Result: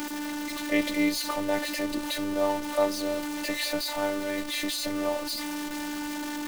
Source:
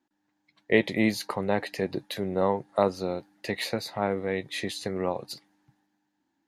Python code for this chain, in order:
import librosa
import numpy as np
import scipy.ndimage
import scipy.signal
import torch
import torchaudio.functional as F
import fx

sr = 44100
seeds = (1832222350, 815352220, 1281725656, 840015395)

y = x + 0.5 * 10.0 ** (-24.5 / 20.0) * np.sign(x)
y = fx.robotise(y, sr, hz=295.0)
y = y * 10.0 ** (-1.5 / 20.0)